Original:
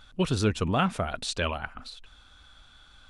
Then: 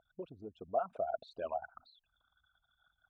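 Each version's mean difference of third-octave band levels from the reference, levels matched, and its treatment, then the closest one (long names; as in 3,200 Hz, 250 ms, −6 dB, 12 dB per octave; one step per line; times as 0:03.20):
11.5 dB: spectral envelope exaggerated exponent 3
downward compressor 5 to 1, threshold −34 dBFS, peak gain reduction 14 dB
resonant band-pass 670 Hz, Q 7.2
level +11.5 dB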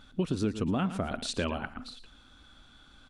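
4.0 dB: parametric band 260 Hz +11.5 dB 1.4 octaves
single-tap delay 113 ms −14 dB
downward compressor 6 to 1, threshold −23 dBFS, peak gain reduction 10.5 dB
level −3 dB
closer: second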